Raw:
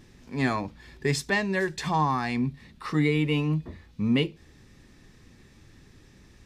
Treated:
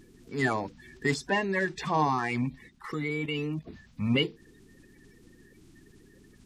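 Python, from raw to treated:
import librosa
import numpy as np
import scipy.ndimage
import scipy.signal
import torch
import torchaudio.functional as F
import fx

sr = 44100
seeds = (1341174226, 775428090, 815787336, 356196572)

y = fx.spec_quant(x, sr, step_db=30)
y = fx.high_shelf(y, sr, hz=5800.0, db=-11.0, at=(1.14, 1.98))
y = fx.level_steps(y, sr, step_db=10, at=(2.68, 3.71), fade=0.02)
y = fx.peak_eq(y, sr, hz=80.0, db=-5.0, octaves=2.1)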